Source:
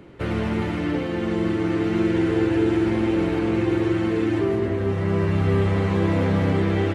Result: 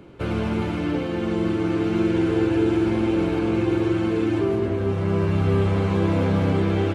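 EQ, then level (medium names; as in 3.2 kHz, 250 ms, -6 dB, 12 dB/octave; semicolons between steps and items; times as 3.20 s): band-stop 1.9 kHz, Q 6.3; 0.0 dB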